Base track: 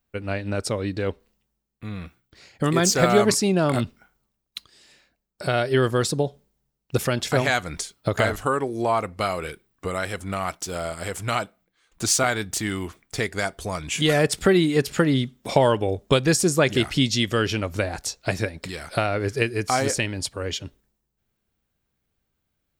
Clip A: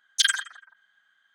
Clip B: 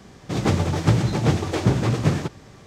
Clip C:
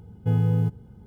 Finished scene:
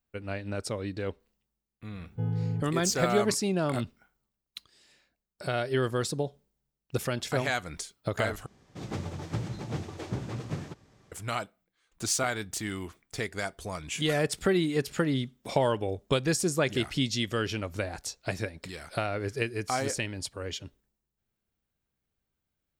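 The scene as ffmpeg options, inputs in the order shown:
-filter_complex "[0:a]volume=-7.5dB[a];[3:a]lowpass=f=2.3k:p=1[b];[a]asplit=2[c][d];[c]atrim=end=8.464[e];[2:a]atrim=end=2.66,asetpts=PTS-STARTPTS,volume=-15dB[f];[d]atrim=start=11.116[g];[b]atrim=end=1.06,asetpts=PTS-STARTPTS,volume=-8.5dB,afade=t=in:d=0.004:c=hsin,afade=t=out:st=1.056:d=0.004:c=hsin,adelay=1920[h];[e][f]acrossfade=d=0.004:c1=hsin:c2=hsin[i];[i][g]acrossfade=d=0.004:c1=hsin:c2=hsin[j];[j][h]amix=inputs=2:normalize=0"

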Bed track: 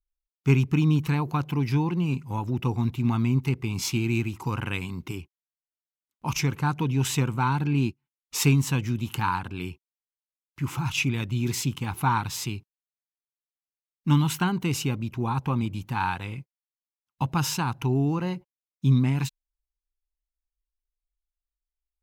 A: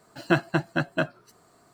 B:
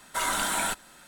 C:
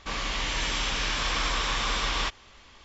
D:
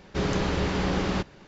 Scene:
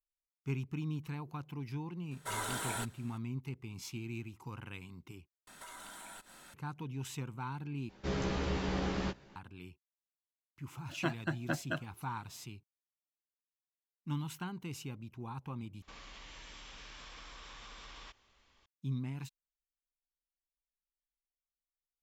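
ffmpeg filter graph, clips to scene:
-filter_complex "[2:a]asplit=2[a][b];[0:a]volume=-16.5dB[c];[a]equalizer=f=430:t=o:w=0.32:g=12.5[d];[b]acompressor=threshold=-45dB:ratio=6:attack=3.2:release=140:knee=1:detection=peak[e];[4:a]asplit=2[f][g];[g]adelay=15,volume=-3dB[h];[f][h]amix=inputs=2:normalize=0[i];[1:a]aphaser=in_gain=1:out_gain=1:delay=1.1:decay=0.35:speed=1.3:type=triangular[j];[3:a]acompressor=threshold=-30dB:ratio=6:attack=3.2:release=140:knee=1:detection=peak[k];[c]asplit=4[l][m][n][o];[l]atrim=end=5.474[p];[e]atrim=end=1.07,asetpts=PTS-STARTPTS,volume=-3.5dB[q];[m]atrim=start=6.536:end=7.894[r];[i]atrim=end=1.47,asetpts=PTS-STARTPTS,volume=-10.5dB[s];[n]atrim=start=9.356:end=15.824[t];[k]atrim=end=2.84,asetpts=PTS-STARTPTS,volume=-17dB[u];[o]atrim=start=18.656[v];[d]atrim=end=1.07,asetpts=PTS-STARTPTS,volume=-11dB,afade=t=in:d=0.004:c=hsin,afade=t=out:st=1.066:d=0.004:c=hsin,adelay=2110[w];[j]atrim=end=1.73,asetpts=PTS-STARTPTS,volume=-12.5dB,afade=t=in:d=0.004:c=hsin,afade=t=out:st=1.726:d=0.004:c=hsin,adelay=10730[x];[p][q]acrossfade=d=0.004:c1=hsin:c2=hsin[y];[y][r]acrossfade=d=0.004:c1=hsin:c2=hsin[z];[z][s]acrossfade=d=0.004:c1=hsin:c2=hsin[aa];[aa][t]acrossfade=d=0.004:c1=hsin:c2=hsin[ab];[ab][u]acrossfade=d=0.004:c1=hsin:c2=hsin[ac];[ac][v]acrossfade=d=0.004:c1=hsin:c2=hsin[ad];[ad][w][x]amix=inputs=3:normalize=0"

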